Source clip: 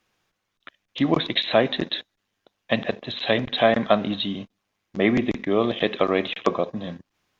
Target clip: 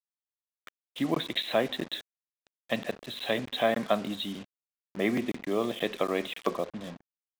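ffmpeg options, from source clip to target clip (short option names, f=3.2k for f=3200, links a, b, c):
-af "highpass=130,acrusher=bits=5:mix=0:aa=0.5,volume=-7.5dB"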